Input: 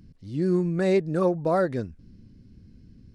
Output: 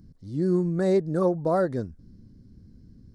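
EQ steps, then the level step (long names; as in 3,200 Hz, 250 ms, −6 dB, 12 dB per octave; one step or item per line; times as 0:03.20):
parametric band 2,600 Hz −14.5 dB 0.75 octaves
0.0 dB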